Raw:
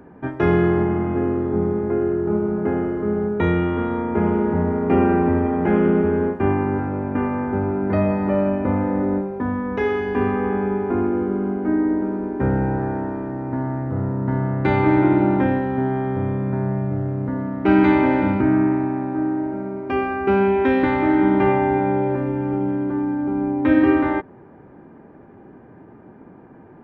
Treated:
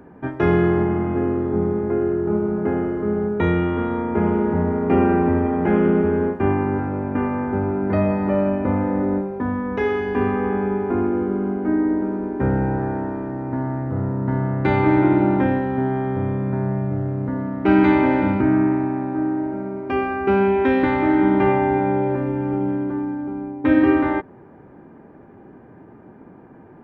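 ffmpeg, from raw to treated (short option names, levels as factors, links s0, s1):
-filter_complex "[0:a]asplit=2[s0][s1];[s0]atrim=end=23.64,asetpts=PTS-STARTPTS,afade=t=out:st=22.72:d=0.92:silence=0.281838[s2];[s1]atrim=start=23.64,asetpts=PTS-STARTPTS,afade=t=in:d=0.004:c=hsin:silence=0.281838[s3];[s2][s3]concat=n=2:v=0:a=1"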